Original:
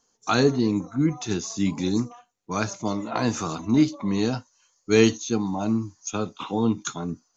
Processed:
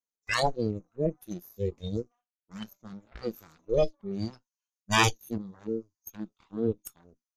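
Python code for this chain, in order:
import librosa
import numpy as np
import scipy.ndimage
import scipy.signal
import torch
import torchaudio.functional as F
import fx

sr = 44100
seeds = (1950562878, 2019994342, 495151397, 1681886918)

y = fx.cheby_harmonics(x, sr, harmonics=(2, 3, 6), levels_db=(-7, -7, -12), full_scale_db=-4.5)
y = fx.noise_reduce_blind(y, sr, reduce_db=20)
y = y * 10.0 ** (-2.5 / 20.0)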